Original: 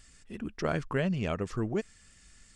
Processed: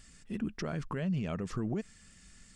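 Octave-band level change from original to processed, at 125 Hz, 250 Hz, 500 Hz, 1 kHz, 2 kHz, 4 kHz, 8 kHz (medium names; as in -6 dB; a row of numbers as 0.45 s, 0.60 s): -2.0 dB, -1.0 dB, -7.5 dB, -6.0 dB, -7.5 dB, -4.5 dB, -1.0 dB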